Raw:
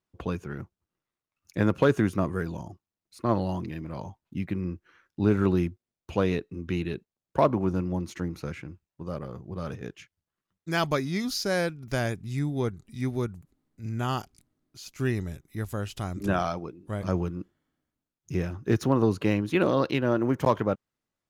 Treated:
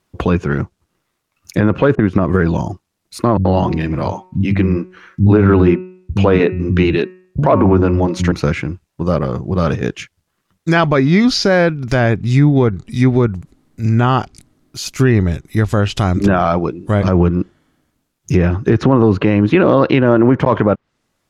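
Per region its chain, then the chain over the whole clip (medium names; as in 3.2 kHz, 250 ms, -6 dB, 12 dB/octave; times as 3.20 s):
1.95–2.36 s: level-controlled noise filter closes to 400 Hz, open at -24 dBFS + compression 5:1, threshold -26 dBFS + transient shaper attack +4 dB, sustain -6 dB
3.37–8.32 s: treble shelf 6.5 kHz -5.5 dB + de-hum 184 Hz, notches 15 + bands offset in time lows, highs 80 ms, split 200 Hz
whole clip: low-pass that closes with the level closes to 2.5 kHz, closed at -24.5 dBFS; loudness maximiser +20 dB; trim -1 dB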